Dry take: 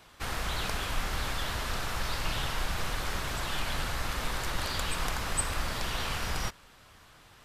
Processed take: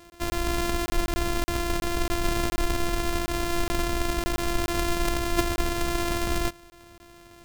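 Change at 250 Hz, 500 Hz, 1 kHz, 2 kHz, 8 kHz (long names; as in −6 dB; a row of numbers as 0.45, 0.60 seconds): +14.0, +11.0, +4.5, +2.0, +2.5 decibels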